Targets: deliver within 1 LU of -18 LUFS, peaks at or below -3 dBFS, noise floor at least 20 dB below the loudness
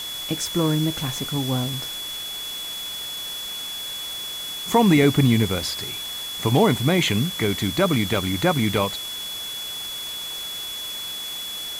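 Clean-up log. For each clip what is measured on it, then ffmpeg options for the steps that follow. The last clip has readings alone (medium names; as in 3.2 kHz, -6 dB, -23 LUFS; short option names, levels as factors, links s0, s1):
steady tone 3.4 kHz; tone level -30 dBFS; noise floor -32 dBFS; noise floor target -44 dBFS; loudness -23.5 LUFS; peak level -5.5 dBFS; loudness target -18.0 LUFS
-> -af "bandreject=f=3400:w=30"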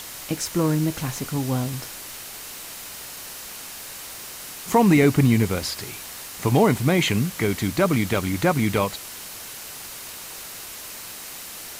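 steady tone not found; noise floor -38 dBFS; noise floor target -44 dBFS
-> -af "afftdn=nr=6:nf=-38"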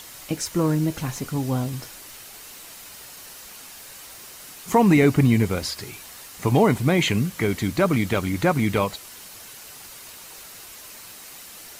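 noise floor -42 dBFS; loudness -22.0 LUFS; peak level -6.0 dBFS; loudness target -18.0 LUFS
-> -af "volume=1.58,alimiter=limit=0.708:level=0:latency=1"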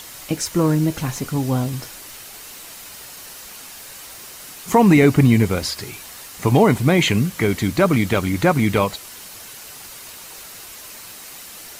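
loudness -18.0 LUFS; peak level -3.0 dBFS; noise floor -38 dBFS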